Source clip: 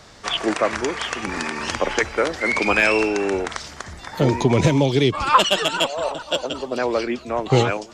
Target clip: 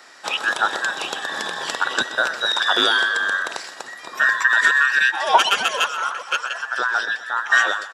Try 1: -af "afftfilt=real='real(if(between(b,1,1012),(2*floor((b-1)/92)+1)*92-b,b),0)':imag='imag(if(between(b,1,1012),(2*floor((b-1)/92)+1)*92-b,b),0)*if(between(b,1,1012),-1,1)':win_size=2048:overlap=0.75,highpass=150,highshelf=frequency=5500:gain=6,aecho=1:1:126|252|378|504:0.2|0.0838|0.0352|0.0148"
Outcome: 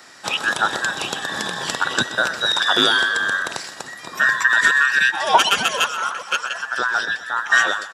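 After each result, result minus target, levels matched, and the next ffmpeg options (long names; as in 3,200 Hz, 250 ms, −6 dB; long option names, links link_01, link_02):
125 Hz band +11.0 dB; 8,000 Hz band +3.0 dB
-af "afftfilt=real='real(if(between(b,1,1012),(2*floor((b-1)/92)+1)*92-b,b),0)':imag='imag(if(between(b,1,1012),(2*floor((b-1)/92)+1)*92-b,b),0)*if(between(b,1,1012),-1,1)':win_size=2048:overlap=0.75,highpass=360,highshelf=frequency=5500:gain=6,aecho=1:1:126|252|378|504:0.2|0.0838|0.0352|0.0148"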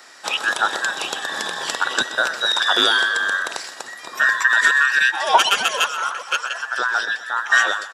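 8,000 Hz band +3.0 dB
-af "afftfilt=real='real(if(between(b,1,1012),(2*floor((b-1)/92)+1)*92-b,b),0)':imag='imag(if(between(b,1,1012),(2*floor((b-1)/92)+1)*92-b,b),0)*if(between(b,1,1012),-1,1)':win_size=2048:overlap=0.75,highpass=360,aecho=1:1:126|252|378|504:0.2|0.0838|0.0352|0.0148"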